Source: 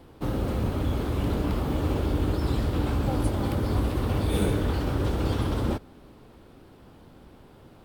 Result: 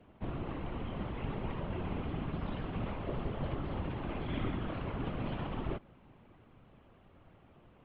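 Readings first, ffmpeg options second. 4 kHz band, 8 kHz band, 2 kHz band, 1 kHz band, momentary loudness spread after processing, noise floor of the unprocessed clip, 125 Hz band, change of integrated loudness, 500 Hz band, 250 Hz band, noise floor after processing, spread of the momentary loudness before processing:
-11.5 dB, under -35 dB, -8.0 dB, -8.0 dB, 3 LU, -52 dBFS, -12.5 dB, -11.5 dB, -11.0 dB, -11.0 dB, -61 dBFS, 3 LU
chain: -af "afftfilt=real='hypot(re,im)*cos(2*PI*random(0))':imag='hypot(re,im)*sin(2*PI*random(1))':win_size=512:overlap=0.75,highpass=f=220:t=q:w=0.5412,highpass=f=220:t=q:w=1.307,lowpass=f=3300:t=q:w=0.5176,lowpass=f=3300:t=q:w=0.7071,lowpass=f=3300:t=q:w=1.932,afreqshift=-210"

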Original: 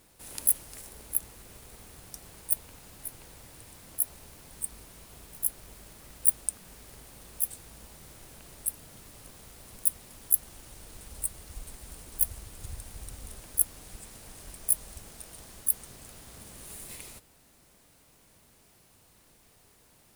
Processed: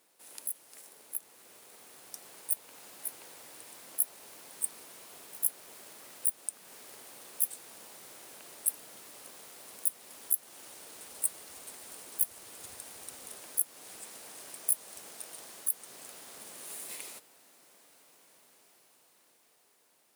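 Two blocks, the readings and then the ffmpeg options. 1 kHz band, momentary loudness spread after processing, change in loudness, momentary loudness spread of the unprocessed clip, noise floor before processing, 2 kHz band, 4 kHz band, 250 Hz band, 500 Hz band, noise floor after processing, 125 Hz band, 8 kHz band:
+0.5 dB, 17 LU, -5.0 dB, 23 LU, -61 dBFS, +0.5 dB, +0.5 dB, -6.5 dB, -0.5 dB, -67 dBFS, under -15 dB, -3.0 dB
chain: -af "highpass=360,alimiter=limit=0.211:level=0:latency=1:release=281,dynaudnorm=f=560:g=7:m=2.66,volume=0.473"

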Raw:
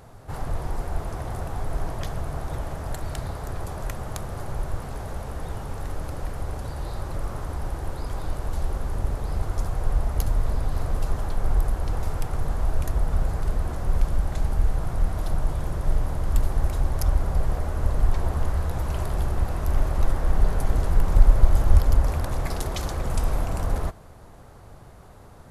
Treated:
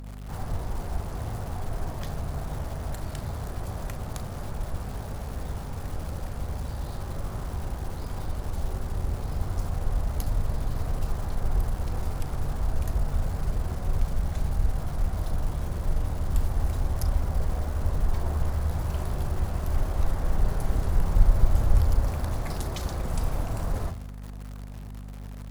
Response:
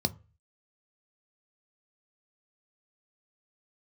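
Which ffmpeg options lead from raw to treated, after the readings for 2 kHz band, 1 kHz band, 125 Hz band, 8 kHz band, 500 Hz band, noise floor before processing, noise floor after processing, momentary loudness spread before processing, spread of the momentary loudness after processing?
-4.0 dB, -4.0 dB, -2.0 dB, -2.5 dB, -4.0 dB, -46 dBFS, -38 dBFS, 9 LU, 8 LU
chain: -filter_complex "[0:a]asplit=2[s0][s1];[1:a]atrim=start_sample=2205,adelay=36[s2];[s1][s2]afir=irnorm=-1:irlink=0,volume=0.133[s3];[s0][s3]amix=inputs=2:normalize=0,acrusher=bits=8:dc=4:mix=0:aa=0.000001,aeval=exprs='val(0)+0.0224*(sin(2*PI*50*n/s)+sin(2*PI*2*50*n/s)/2+sin(2*PI*3*50*n/s)/3+sin(2*PI*4*50*n/s)/4+sin(2*PI*5*50*n/s)/5)':c=same,volume=0.596"

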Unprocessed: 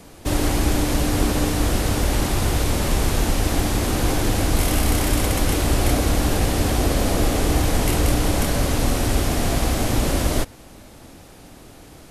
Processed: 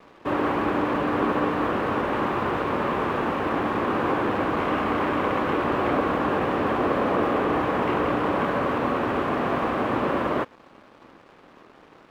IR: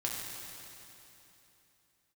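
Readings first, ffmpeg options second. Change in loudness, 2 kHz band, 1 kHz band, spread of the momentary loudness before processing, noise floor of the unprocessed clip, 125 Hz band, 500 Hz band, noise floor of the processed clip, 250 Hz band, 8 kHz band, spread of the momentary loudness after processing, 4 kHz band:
-3.0 dB, 0.0 dB, +4.0 dB, 2 LU, -44 dBFS, -13.0 dB, +1.0 dB, -52 dBFS, -2.0 dB, under -25 dB, 2 LU, -12.0 dB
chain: -af "highpass=260,equalizer=f=290:t=q:w=4:g=-3,equalizer=f=700:t=q:w=4:g=-4,equalizer=f=1100:t=q:w=4:g=7,equalizer=f=2100:t=q:w=4:g=-5,lowpass=f=2300:w=0.5412,lowpass=f=2300:w=1.3066,aeval=exprs='sgn(val(0))*max(abs(val(0))-0.00251,0)':c=same,volume=1.41"

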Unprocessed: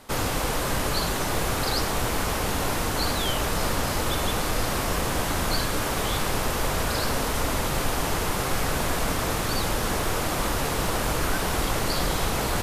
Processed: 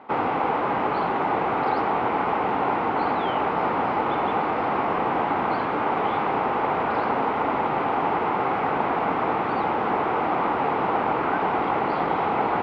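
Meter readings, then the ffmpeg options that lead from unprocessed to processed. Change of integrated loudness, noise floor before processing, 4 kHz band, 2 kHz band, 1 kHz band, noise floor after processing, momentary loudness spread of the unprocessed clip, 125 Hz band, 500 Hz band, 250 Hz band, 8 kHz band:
+2.0 dB, -27 dBFS, -12.5 dB, -0.5 dB, +8.0 dB, -26 dBFS, 1 LU, -8.0 dB, +3.5 dB, +2.0 dB, under -35 dB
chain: -af "highpass=260,equalizer=f=570:t=q:w=4:g=-5,equalizer=f=820:t=q:w=4:g=7,equalizer=f=1700:t=q:w=4:g=-8,lowpass=f=2100:w=0.5412,lowpass=f=2100:w=1.3066,volume=1.88"

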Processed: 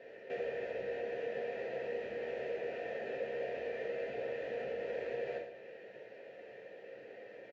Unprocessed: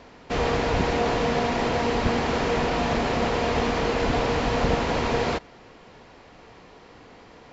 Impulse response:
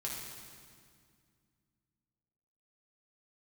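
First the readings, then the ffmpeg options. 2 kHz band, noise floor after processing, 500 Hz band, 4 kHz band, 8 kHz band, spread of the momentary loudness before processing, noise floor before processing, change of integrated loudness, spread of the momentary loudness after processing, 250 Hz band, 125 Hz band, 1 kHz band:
-16.0 dB, -53 dBFS, -11.5 dB, -25.0 dB, no reading, 2 LU, -49 dBFS, -15.5 dB, 12 LU, -25.5 dB, -30.5 dB, -24.0 dB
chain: -filter_complex "[0:a]highpass=72,equalizer=f=3900:t=o:w=1.7:g=-4.5,acompressor=threshold=0.0178:ratio=8,asplit=3[s0][s1][s2];[s0]bandpass=f=530:t=q:w=8,volume=1[s3];[s1]bandpass=f=1840:t=q:w=8,volume=0.501[s4];[s2]bandpass=f=2480:t=q:w=8,volume=0.355[s5];[s3][s4][s5]amix=inputs=3:normalize=0,aecho=1:1:111|222|333|444|555:0.316|0.145|0.0669|0.0308|0.0142[s6];[1:a]atrim=start_sample=2205,afade=t=out:st=0.13:d=0.01,atrim=end_sample=6174[s7];[s6][s7]afir=irnorm=-1:irlink=0,volume=2.82"

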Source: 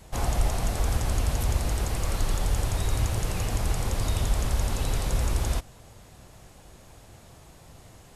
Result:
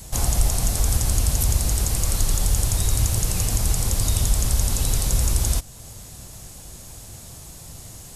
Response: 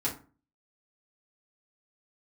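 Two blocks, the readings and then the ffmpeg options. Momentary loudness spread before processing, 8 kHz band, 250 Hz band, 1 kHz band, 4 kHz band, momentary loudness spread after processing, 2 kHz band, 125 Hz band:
2 LU, +12.5 dB, +2.5 dB, -1.0 dB, +7.0 dB, 18 LU, +0.5 dB, +5.0 dB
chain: -filter_complex "[0:a]bass=f=250:g=6,treble=f=4000:g=15,asplit=2[s0][s1];[s1]acompressor=threshold=0.0282:ratio=6,volume=0.891[s2];[s0][s2]amix=inputs=2:normalize=0,volume=0.75"

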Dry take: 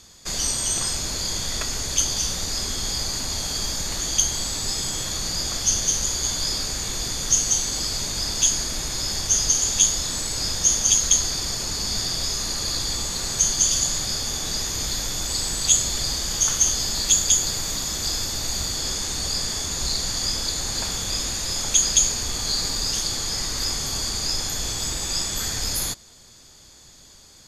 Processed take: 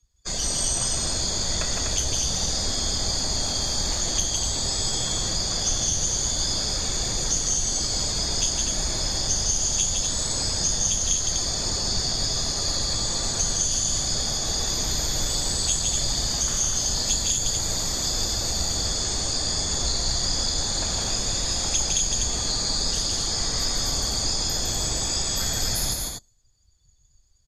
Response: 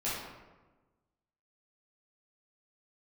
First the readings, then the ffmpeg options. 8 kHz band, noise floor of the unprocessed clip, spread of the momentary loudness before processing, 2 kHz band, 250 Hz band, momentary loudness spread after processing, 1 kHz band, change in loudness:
-2.0 dB, -49 dBFS, 7 LU, -2.5 dB, +1.5 dB, 2 LU, +1.0 dB, -1.5 dB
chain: -filter_complex "[0:a]afftdn=nr=29:nf=-39,adynamicequalizer=threshold=0.00251:dfrequency=650:dqfactor=1.9:tfrequency=650:tqfactor=1.9:attack=5:release=100:ratio=0.375:range=2.5:mode=boostabove:tftype=bell,acrossover=split=190[s0][s1];[s1]acompressor=threshold=0.0501:ratio=2.5[s2];[s0][s2]amix=inputs=2:normalize=0,asplit=2[s3][s4];[s4]aecho=0:1:32.07|160.3|247.8:0.251|0.708|0.562[s5];[s3][s5]amix=inputs=2:normalize=0"

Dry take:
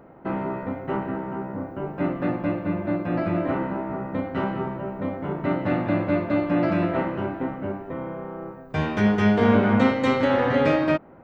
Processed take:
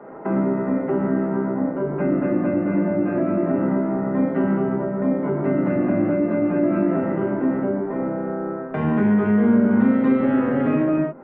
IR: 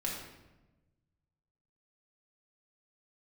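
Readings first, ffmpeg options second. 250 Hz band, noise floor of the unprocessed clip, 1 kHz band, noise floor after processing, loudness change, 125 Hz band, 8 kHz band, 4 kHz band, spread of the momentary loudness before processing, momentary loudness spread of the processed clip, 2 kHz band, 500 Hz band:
+5.5 dB, -44 dBFS, -2.0 dB, -29 dBFS, +3.5 dB, +1.5 dB, no reading, under -15 dB, 12 LU, 7 LU, -3.0 dB, +2.5 dB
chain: -filter_complex "[1:a]atrim=start_sample=2205,afade=t=out:st=0.17:d=0.01,atrim=end_sample=7938,asetrate=34398,aresample=44100[s0];[0:a][s0]afir=irnorm=-1:irlink=0,acompressor=threshold=0.178:ratio=6,acrossover=split=220 2500:gain=0.1 1 0.0708[s1][s2][s3];[s1][s2][s3]amix=inputs=3:normalize=0,acrossover=split=330[s4][s5];[s5]acompressor=threshold=0.0158:ratio=6[s6];[s4][s6]amix=inputs=2:normalize=0,equalizer=f=5300:w=0.87:g=-8,volume=2.66"

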